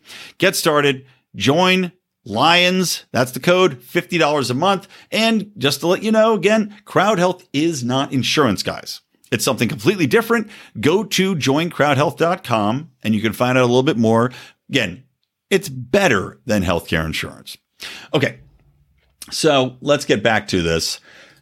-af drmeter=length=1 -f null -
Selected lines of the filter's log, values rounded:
Channel 1: DR: 11.2
Overall DR: 11.2